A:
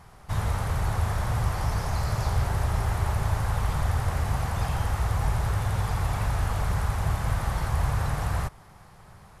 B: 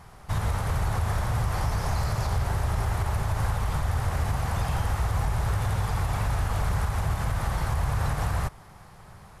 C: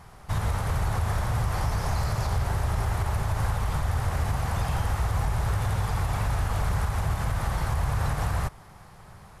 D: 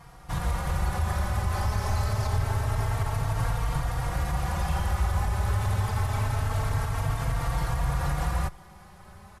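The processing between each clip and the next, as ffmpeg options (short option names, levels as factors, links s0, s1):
-af "alimiter=limit=0.106:level=0:latency=1:release=77,volume=1.26"
-af anull
-filter_complex "[0:a]asplit=2[s0][s1];[s1]adelay=3.8,afreqshift=0.26[s2];[s0][s2]amix=inputs=2:normalize=1,volume=1.33"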